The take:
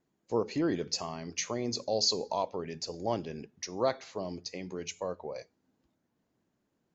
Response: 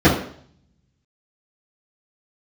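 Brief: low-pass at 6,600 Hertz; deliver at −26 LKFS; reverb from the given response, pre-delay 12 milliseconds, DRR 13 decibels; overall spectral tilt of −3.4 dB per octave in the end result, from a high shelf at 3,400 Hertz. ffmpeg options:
-filter_complex "[0:a]lowpass=6600,highshelf=frequency=3400:gain=6,asplit=2[link_01][link_02];[1:a]atrim=start_sample=2205,adelay=12[link_03];[link_02][link_03]afir=irnorm=-1:irlink=0,volume=-37.5dB[link_04];[link_01][link_04]amix=inputs=2:normalize=0,volume=6dB"

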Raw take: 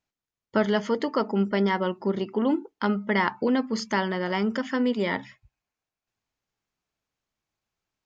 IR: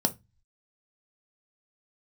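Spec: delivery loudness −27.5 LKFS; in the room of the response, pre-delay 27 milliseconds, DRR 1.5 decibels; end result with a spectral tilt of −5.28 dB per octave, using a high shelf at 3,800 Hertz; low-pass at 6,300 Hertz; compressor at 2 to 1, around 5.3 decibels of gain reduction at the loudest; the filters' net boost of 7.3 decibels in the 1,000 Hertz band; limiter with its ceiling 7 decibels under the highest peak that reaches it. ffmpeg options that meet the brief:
-filter_complex "[0:a]lowpass=6300,equalizer=frequency=1000:width_type=o:gain=9,highshelf=frequency=3800:gain=-8,acompressor=threshold=-24dB:ratio=2,alimiter=limit=-17.5dB:level=0:latency=1,asplit=2[link_01][link_02];[1:a]atrim=start_sample=2205,adelay=27[link_03];[link_02][link_03]afir=irnorm=-1:irlink=0,volume=-9.5dB[link_04];[link_01][link_04]amix=inputs=2:normalize=0,volume=-6dB"

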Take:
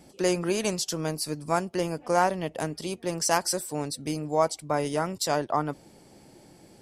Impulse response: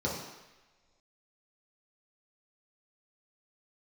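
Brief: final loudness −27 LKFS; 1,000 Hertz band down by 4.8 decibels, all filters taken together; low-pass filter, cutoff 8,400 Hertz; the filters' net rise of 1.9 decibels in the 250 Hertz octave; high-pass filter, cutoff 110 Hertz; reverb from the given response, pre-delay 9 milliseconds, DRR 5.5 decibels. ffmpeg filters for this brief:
-filter_complex "[0:a]highpass=110,lowpass=8400,equalizer=frequency=250:width_type=o:gain=4,equalizer=frequency=1000:width_type=o:gain=-7,asplit=2[link_01][link_02];[1:a]atrim=start_sample=2205,adelay=9[link_03];[link_02][link_03]afir=irnorm=-1:irlink=0,volume=-13dB[link_04];[link_01][link_04]amix=inputs=2:normalize=0,volume=-1dB"

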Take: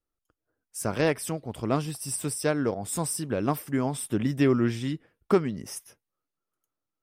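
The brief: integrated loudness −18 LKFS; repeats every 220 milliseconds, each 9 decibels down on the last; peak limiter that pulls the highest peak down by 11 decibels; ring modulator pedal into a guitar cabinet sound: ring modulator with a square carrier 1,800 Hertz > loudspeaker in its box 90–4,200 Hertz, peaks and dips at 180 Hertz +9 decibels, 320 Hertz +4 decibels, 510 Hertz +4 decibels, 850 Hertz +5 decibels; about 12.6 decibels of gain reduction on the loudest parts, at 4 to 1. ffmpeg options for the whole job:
ffmpeg -i in.wav -af "acompressor=threshold=-32dB:ratio=4,alimiter=level_in=6.5dB:limit=-24dB:level=0:latency=1,volume=-6.5dB,aecho=1:1:220|440|660|880:0.355|0.124|0.0435|0.0152,aeval=exprs='val(0)*sgn(sin(2*PI*1800*n/s))':channel_layout=same,highpass=90,equalizer=frequency=180:width_type=q:width=4:gain=9,equalizer=frequency=320:width_type=q:width=4:gain=4,equalizer=frequency=510:width_type=q:width=4:gain=4,equalizer=frequency=850:width_type=q:width=4:gain=5,lowpass=frequency=4200:width=0.5412,lowpass=frequency=4200:width=1.3066,volume=21.5dB" out.wav

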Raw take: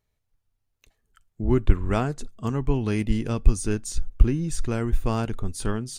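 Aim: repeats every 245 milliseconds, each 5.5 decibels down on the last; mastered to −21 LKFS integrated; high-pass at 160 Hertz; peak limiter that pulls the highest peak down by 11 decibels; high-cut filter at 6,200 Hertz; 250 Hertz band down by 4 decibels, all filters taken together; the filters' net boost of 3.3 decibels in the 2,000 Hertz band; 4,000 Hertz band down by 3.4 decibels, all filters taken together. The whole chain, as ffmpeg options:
ffmpeg -i in.wav -af "highpass=160,lowpass=6200,equalizer=frequency=250:width_type=o:gain=-4,equalizer=frequency=2000:width_type=o:gain=6,equalizer=frequency=4000:width_type=o:gain=-6,alimiter=limit=-22dB:level=0:latency=1,aecho=1:1:245|490|735|980|1225|1470|1715:0.531|0.281|0.149|0.079|0.0419|0.0222|0.0118,volume=12dB" out.wav

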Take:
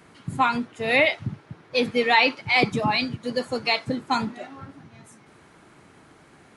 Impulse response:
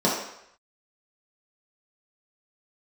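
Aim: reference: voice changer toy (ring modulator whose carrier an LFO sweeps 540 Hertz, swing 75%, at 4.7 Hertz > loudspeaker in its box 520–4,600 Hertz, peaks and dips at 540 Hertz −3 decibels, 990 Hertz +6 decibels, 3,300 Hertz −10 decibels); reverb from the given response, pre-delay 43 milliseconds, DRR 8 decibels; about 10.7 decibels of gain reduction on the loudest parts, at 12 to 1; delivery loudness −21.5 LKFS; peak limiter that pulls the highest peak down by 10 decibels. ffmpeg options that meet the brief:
-filter_complex "[0:a]acompressor=threshold=-24dB:ratio=12,alimiter=limit=-23.5dB:level=0:latency=1,asplit=2[link_01][link_02];[1:a]atrim=start_sample=2205,adelay=43[link_03];[link_02][link_03]afir=irnorm=-1:irlink=0,volume=-24.5dB[link_04];[link_01][link_04]amix=inputs=2:normalize=0,aeval=exprs='val(0)*sin(2*PI*540*n/s+540*0.75/4.7*sin(2*PI*4.7*n/s))':channel_layout=same,highpass=520,equalizer=frequency=540:width_type=q:width=4:gain=-3,equalizer=frequency=990:width_type=q:width=4:gain=6,equalizer=frequency=3300:width_type=q:width=4:gain=-10,lowpass=frequency=4600:width=0.5412,lowpass=frequency=4600:width=1.3066,volume=15.5dB"

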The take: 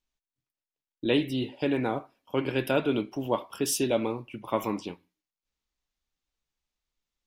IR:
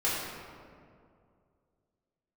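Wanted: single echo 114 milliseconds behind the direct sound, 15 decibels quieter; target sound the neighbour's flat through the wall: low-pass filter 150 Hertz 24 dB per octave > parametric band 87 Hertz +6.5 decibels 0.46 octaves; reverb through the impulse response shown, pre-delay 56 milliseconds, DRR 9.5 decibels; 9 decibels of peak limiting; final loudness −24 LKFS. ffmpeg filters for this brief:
-filter_complex "[0:a]alimiter=limit=-20dB:level=0:latency=1,aecho=1:1:114:0.178,asplit=2[link_01][link_02];[1:a]atrim=start_sample=2205,adelay=56[link_03];[link_02][link_03]afir=irnorm=-1:irlink=0,volume=-19.5dB[link_04];[link_01][link_04]amix=inputs=2:normalize=0,lowpass=frequency=150:width=0.5412,lowpass=frequency=150:width=1.3066,equalizer=frequency=87:width_type=o:width=0.46:gain=6.5,volume=21dB"

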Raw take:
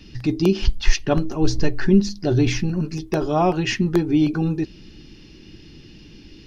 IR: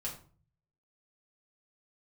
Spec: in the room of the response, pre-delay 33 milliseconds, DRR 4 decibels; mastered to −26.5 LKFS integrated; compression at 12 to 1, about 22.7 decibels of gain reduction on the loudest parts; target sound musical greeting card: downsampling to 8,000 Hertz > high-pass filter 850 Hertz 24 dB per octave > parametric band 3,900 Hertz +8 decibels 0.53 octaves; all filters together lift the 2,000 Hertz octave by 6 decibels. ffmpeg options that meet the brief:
-filter_complex "[0:a]equalizer=frequency=2000:width_type=o:gain=6.5,acompressor=threshold=-30dB:ratio=12,asplit=2[link_01][link_02];[1:a]atrim=start_sample=2205,adelay=33[link_03];[link_02][link_03]afir=irnorm=-1:irlink=0,volume=-4.5dB[link_04];[link_01][link_04]amix=inputs=2:normalize=0,aresample=8000,aresample=44100,highpass=frequency=850:width=0.5412,highpass=frequency=850:width=1.3066,equalizer=frequency=3900:width_type=o:width=0.53:gain=8,volume=14dB"

